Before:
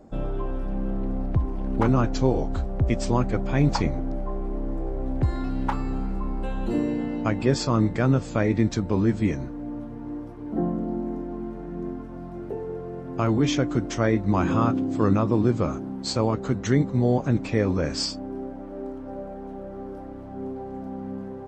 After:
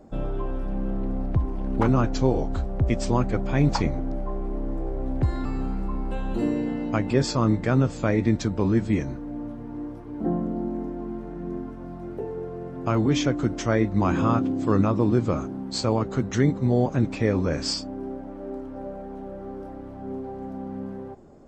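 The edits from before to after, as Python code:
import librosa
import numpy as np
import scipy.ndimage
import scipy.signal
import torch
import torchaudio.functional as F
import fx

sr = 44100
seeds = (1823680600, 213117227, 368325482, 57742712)

y = fx.edit(x, sr, fx.cut(start_s=5.45, length_s=0.32), tone=tone)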